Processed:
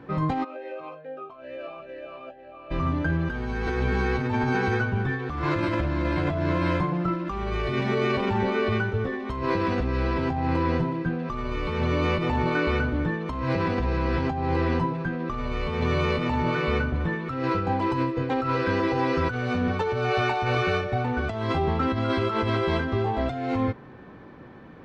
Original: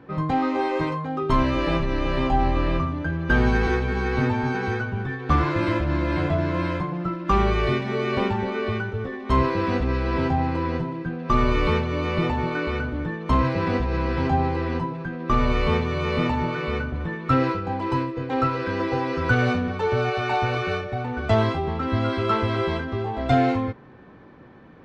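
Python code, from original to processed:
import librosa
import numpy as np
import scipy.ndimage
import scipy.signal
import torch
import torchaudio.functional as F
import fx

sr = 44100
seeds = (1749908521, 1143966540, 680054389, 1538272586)

y = fx.over_compress(x, sr, threshold_db=-25.0, ratio=-1.0)
y = fx.vowel_sweep(y, sr, vowels='a-e', hz=2.3, at=(0.43, 2.7), fade=0.02)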